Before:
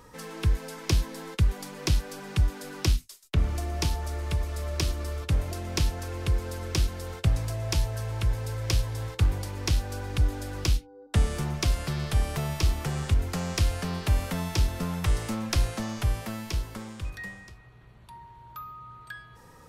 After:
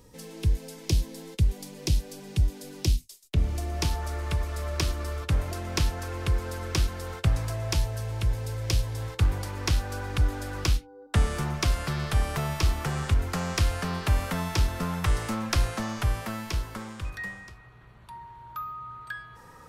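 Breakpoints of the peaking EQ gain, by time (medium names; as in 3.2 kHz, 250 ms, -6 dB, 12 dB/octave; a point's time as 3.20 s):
peaking EQ 1.3 kHz 1.4 oct
3.00 s -14 dB
3.50 s -6 dB
3.98 s +4.5 dB
7.56 s +4.5 dB
8.02 s -2.5 dB
8.85 s -2.5 dB
9.46 s +5.5 dB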